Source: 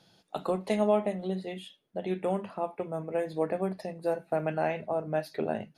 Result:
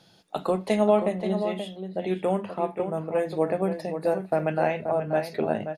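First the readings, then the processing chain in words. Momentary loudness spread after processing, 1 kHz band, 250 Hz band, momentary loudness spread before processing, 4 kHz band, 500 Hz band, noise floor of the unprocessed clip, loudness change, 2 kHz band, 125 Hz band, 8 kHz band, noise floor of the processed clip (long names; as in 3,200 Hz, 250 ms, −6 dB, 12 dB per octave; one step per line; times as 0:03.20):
8 LU, +5.0 dB, +5.0 dB, 9 LU, +4.5 dB, +5.0 dB, −71 dBFS, +5.0 dB, +5.0 dB, +5.0 dB, can't be measured, −58 dBFS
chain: slap from a distant wall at 91 metres, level −8 dB
level +4.5 dB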